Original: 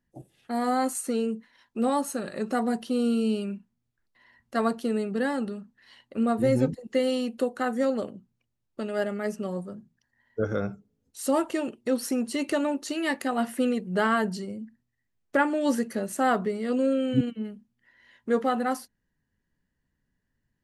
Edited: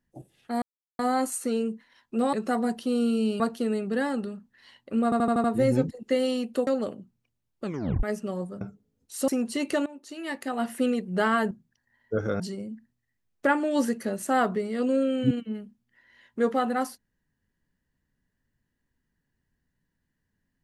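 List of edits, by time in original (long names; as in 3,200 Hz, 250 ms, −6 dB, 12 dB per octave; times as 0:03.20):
0:00.62: splice in silence 0.37 s
0:01.96–0:02.37: remove
0:03.44–0:04.64: remove
0:06.28: stutter 0.08 s, 6 plays
0:07.51–0:07.83: remove
0:08.80: tape stop 0.39 s
0:09.77–0:10.66: move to 0:14.30
0:11.33–0:12.07: remove
0:12.65–0:13.61: fade in, from −21 dB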